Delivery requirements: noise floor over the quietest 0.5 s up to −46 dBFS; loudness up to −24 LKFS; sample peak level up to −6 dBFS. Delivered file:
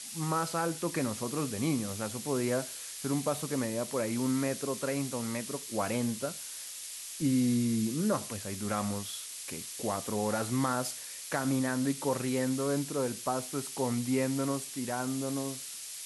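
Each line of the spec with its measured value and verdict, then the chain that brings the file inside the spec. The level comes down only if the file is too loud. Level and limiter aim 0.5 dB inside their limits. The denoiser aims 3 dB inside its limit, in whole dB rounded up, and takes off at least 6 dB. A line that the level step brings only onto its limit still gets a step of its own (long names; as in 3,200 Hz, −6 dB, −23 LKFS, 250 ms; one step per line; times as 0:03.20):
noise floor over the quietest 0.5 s −43 dBFS: out of spec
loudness −32.5 LKFS: in spec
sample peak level −16.0 dBFS: in spec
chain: broadband denoise 6 dB, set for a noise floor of −43 dBFS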